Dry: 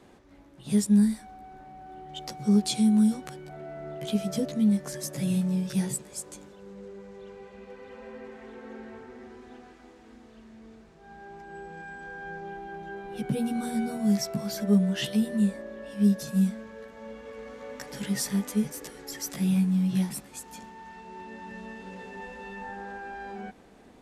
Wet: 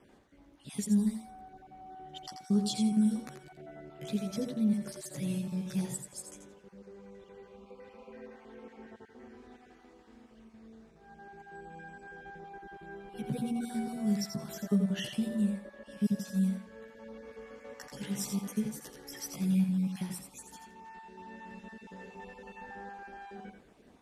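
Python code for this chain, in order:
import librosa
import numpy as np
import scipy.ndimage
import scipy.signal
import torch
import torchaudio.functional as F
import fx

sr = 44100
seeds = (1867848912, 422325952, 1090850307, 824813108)

y = fx.spec_dropout(x, sr, seeds[0], share_pct=24)
y = fx.echo_feedback(y, sr, ms=85, feedback_pct=18, wet_db=-7)
y = F.gain(torch.from_numpy(y), -6.0).numpy()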